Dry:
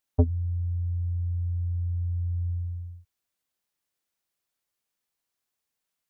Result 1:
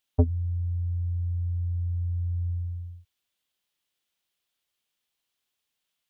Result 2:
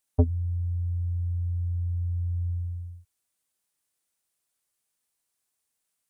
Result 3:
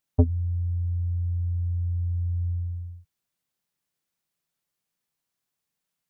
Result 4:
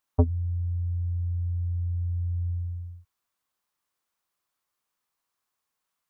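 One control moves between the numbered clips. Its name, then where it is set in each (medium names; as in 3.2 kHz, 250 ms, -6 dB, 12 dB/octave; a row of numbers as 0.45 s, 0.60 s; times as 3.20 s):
peaking EQ, frequency: 3.2 kHz, 9.2 kHz, 160 Hz, 1.1 kHz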